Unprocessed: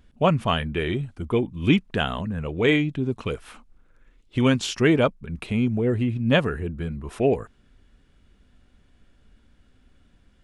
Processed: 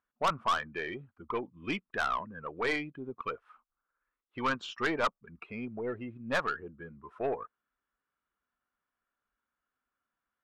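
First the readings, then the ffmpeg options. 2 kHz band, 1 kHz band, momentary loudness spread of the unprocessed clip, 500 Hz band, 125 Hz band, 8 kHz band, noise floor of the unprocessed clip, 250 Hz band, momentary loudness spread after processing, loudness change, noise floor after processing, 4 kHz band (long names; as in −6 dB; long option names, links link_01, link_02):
−5.5 dB, −2.5 dB, 10 LU, −12.0 dB, −22.5 dB, −11.5 dB, −60 dBFS, −17.0 dB, 14 LU, −10.5 dB, below −85 dBFS, −11.0 dB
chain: -af "afftdn=noise_reduction=18:noise_floor=-33,bandpass=frequency=1200:width_type=q:width=3:csg=0,aeval=exprs='(tanh(31.6*val(0)+0.2)-tanh(0.2))/31.6':channel_layout=same,volume=7dB"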